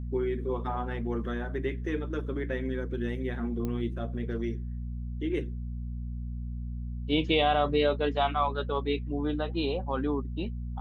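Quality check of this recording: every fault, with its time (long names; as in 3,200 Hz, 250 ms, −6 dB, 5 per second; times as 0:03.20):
mains hum 60 Hz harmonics 4 −35 dBFS
0:03.65: click −21 dBFS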